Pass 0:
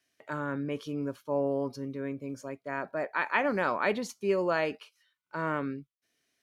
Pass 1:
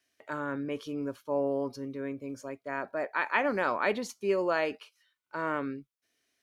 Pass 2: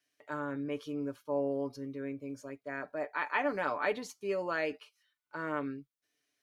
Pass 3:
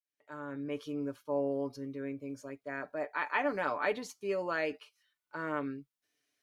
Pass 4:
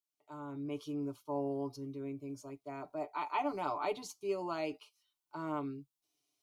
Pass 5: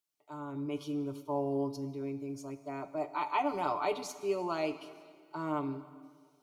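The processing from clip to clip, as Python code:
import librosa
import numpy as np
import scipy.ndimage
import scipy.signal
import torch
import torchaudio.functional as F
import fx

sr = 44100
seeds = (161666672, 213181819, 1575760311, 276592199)

y1 = fx.peak_eq(x, sr, hz=160.0, db=-8.0, octaves=0.51)
y2 = y1 + 0.57 * np.pad(y1, (int(6.8 * sr / 1000.0), 0))[:len(y1)]
y2 = y2 * 10.0 ** (-5.5 / 20.0)
y3 = fx.fade_in_head(y2, sr, length_s=0.79)
y4 = fx.fixed_phaser(y3, sr, hz=340.0, stages=8)
y4 = y4 * 10.0 ** (1.0 / 20.0)
y5 = fx.rev_plate(y4, sr, seeds[0], rt60_s=1.9, hf_ratio=1.0, predelay_ms=0, drr_db=11.5)
y5 = y5 * 10.0 ** (3.5 / 20.0)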